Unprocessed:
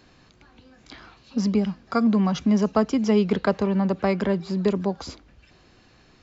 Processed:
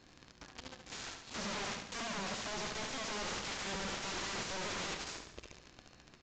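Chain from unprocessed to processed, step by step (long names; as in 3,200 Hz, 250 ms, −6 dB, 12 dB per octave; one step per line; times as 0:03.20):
0:04.57–0:05.07: low-pass filter 1,800 Hz 12 dB per octave
leveller curve on the samples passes 5
wave folding −36 dBFS
repeating echo 71 ms, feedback 52%, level −6.5 dB
level +1.5 dB
mu-law 128 kbit/s 16,000 Hz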